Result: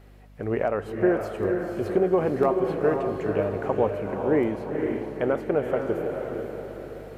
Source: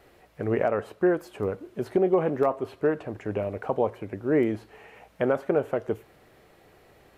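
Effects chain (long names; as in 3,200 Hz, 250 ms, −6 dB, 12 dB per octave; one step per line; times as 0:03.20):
speech leveller 2 s
mains hum 50 Hz, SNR 23 dB
feedback delay with all-pass diffusion 490 ms, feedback 48%, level −4 dB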